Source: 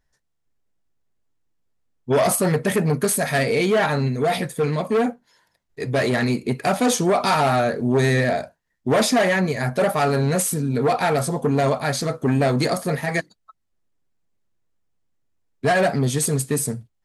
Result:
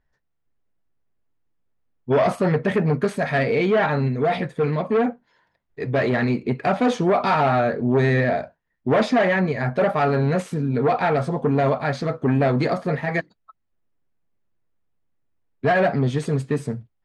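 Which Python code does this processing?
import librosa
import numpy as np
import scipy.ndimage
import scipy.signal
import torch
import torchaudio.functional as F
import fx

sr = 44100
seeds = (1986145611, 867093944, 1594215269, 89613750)

y = scipy.signal.sosfilt(scipy.signal.butter(2, 2700.0, 'lowpass', fs=sr, output='sos'), x)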